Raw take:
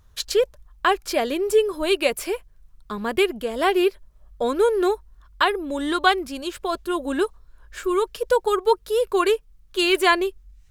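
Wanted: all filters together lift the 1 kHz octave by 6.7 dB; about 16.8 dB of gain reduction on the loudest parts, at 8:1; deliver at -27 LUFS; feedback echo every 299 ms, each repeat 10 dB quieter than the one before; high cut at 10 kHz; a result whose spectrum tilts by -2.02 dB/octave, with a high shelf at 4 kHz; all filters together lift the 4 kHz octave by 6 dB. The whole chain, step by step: low-pass 10 kHz; peaking EQ 1 kHz +7.5 dB; treble shelf 4 kHz +8 dB; peaking EQ 4 kHz +3 dB; compression 8:1, threshold -25 dBFS; feedback delay 299 ms, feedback 32%, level -10 dB; trim +2.5 dB

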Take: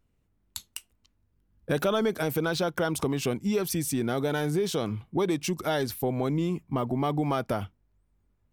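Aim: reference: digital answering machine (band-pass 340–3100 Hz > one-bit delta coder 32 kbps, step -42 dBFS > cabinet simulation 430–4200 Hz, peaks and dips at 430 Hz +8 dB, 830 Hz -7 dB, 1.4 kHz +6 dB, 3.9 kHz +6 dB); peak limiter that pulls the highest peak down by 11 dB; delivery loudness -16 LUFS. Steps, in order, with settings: peak limiter -27 dBFS; band-pass 340–3100 Hz; one-bit delta coder 32 kbps, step -42 dBFS; cabinet simulation 430–4200 Hz, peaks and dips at 430 Hz +8 dB, 830 Hz -7 dB, 1.4 kHz +6 dB, 3.9 kHz +6 dB; trim +23.5 dB

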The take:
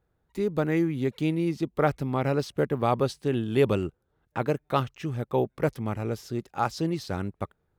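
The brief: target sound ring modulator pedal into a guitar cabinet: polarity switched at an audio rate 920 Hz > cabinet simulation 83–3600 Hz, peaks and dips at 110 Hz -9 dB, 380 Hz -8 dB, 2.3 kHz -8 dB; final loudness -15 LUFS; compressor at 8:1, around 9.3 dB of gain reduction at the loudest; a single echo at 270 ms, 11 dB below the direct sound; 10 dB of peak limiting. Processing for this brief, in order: compression 8:1, threshold -26 dBFS; peak limiter -25 dBFS; delay 270 ms -11 dB; polarity switched at an audio rate 920 Hz; cabinet simulation 83–3600 Hz, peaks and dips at 110 Hz -9 dB, 380 Hz -8 dB, 2.3 kHz -8 dB; trim +21 dB

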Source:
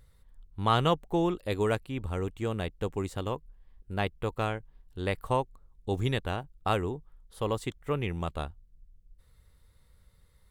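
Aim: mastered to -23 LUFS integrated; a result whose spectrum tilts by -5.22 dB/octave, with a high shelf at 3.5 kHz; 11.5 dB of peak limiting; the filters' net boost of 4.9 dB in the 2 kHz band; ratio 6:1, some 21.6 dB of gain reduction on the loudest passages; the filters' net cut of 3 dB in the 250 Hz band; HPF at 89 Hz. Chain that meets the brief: high-pass 89 Hz; peaking EQ 250 Hz -4.5 dB; peaking EQ 2 kHz +8 dB; treble shelf 3.5 kHz -5 dB; compression 6:1, threshold -44 dBFS; trim +29 dB; peak limiter -10 dBFS

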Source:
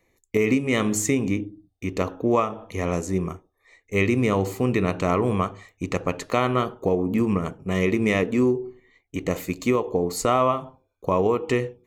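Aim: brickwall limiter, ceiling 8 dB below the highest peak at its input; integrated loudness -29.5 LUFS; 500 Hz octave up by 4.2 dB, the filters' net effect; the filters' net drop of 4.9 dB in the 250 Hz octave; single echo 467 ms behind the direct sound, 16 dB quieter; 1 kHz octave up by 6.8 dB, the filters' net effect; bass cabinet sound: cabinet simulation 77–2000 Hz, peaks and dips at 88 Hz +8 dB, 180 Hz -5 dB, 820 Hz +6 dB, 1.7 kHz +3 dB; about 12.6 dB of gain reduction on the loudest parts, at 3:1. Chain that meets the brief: peaking EQ 250 Hz -8 dB; peaking EQ 500 Hz +6 dB; peaking EQ 1 kHz +4.5 dB; compression 3:1, threshold -30 dBFS; peak limiter -21 dBFS; cabinet simulation 77–2000 Hz, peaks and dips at 88 Hz +8 dB, 180 Hz -5 dB, 820 Hz +6 dB, 1.7 kHz +3 dB; delay 467 ms -16 dB; trim +4 dB

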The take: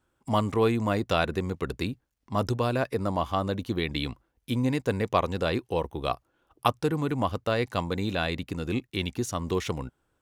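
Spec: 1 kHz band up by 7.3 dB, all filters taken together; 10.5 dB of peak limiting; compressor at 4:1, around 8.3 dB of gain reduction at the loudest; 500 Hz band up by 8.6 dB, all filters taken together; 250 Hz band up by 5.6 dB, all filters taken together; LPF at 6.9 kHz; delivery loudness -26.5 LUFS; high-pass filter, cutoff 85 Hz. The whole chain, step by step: high-pass 85 Hz; low-pass 6.9 kHz; peaking EQ 250 Hz +4.5 dB; peaking EQ 500 Hz +7.5 dB; peaking EQ 1 kHz +6.5 dB; compression 4:1, threshold -20 dBFS; trim +2 dB; peak limiter -13 dBFS

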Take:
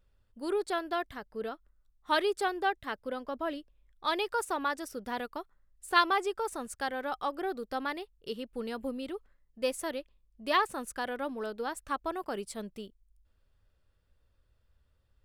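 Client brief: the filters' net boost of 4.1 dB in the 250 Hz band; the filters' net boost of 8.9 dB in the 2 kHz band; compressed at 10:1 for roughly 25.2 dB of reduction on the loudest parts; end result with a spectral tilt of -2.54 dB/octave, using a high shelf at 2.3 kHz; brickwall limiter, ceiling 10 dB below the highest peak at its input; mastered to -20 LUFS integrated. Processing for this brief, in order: peaking EQ 250 Hz +5 dB; peaking EQ 2 kHz +8 dB; treble shelf 2.3 kHz +7.5 dB; compression 10:1, threshold -38 dBFS; trim +25 dB; peak limiter -9 dBFS

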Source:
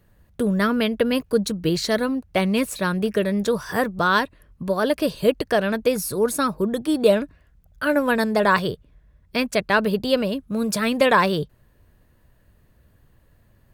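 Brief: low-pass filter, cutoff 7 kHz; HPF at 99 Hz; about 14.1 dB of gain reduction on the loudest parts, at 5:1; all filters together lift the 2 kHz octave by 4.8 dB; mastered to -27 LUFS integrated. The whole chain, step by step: high-pass 99 Hz; low-pass 7 kHz; peaking EQ 2 kHz +6.5 dB; compression 5:1, threshold -27 dBFS; trim +3.5 dB

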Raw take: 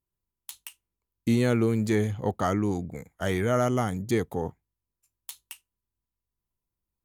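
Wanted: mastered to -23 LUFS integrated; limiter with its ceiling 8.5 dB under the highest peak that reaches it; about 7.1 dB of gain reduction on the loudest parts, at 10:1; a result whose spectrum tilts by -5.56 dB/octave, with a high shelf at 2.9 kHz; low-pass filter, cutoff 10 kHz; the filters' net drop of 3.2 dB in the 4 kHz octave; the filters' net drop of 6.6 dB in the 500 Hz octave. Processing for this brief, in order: low-pass 10 kHz; peaking EQ 500 Hz -9 dB; treble shelf 2.9 kHz +5 dB; peaking EQ 4 kHz -8 dB; compression 10:1, threshold -28 dBFS; trim +15.5 dB; peak limiter -11.5 dBFS

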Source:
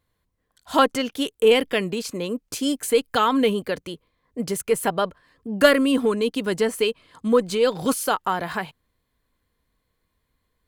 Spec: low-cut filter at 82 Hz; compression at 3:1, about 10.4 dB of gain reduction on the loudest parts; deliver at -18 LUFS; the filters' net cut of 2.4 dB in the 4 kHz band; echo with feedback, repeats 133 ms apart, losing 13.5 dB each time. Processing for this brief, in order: high-pass 82 Hz; peaking EQ 4 kHz -3.5 dB; compression 3:1, threshold -24 dBFS; feedback delay 133 ms, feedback 21%, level -13.5 dB; trim +10 dB

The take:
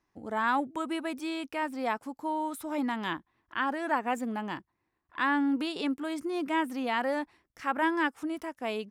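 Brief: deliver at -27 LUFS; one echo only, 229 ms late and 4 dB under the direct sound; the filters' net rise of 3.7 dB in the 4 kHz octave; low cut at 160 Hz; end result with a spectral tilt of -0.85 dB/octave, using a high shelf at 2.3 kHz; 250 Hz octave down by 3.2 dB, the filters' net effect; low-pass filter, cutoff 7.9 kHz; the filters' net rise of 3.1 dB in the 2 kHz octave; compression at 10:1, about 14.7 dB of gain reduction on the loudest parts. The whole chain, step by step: high-pass 160 Hz; low-pass 7.9 kHz; peaking EQ 250 Hz -3.5 dB; peaking EQ 2 kHz +5 dB; treble shelf 2.3 kHz -6 dB; peaking EQ 4 kHz +8.5 dB; compression 10:1, threshold -37 dBFS; delay 229 ms -4 dB; trim +13.5 dB

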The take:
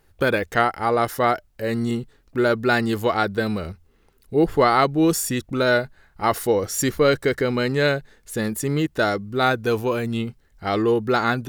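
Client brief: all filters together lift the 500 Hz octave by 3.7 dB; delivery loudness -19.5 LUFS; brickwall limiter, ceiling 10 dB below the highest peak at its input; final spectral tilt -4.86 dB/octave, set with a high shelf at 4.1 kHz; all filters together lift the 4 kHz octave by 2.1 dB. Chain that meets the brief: peaking EQ 500 Hz +4.5 dB; peaking EQ 4 kHz +6 dB; treble shelf 4.1 kHz -7 dB; trim +4 dB; peak limiter -8.5 dBFS

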